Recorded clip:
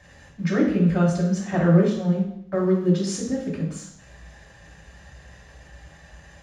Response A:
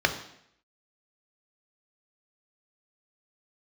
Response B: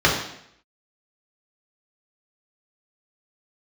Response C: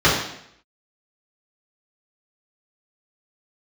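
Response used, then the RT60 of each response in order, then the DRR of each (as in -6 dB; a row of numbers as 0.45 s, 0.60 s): B; 0.70 s, 0.70 s, 0.70 s; 6.0 dB, -3.5 dB, -9.0 dB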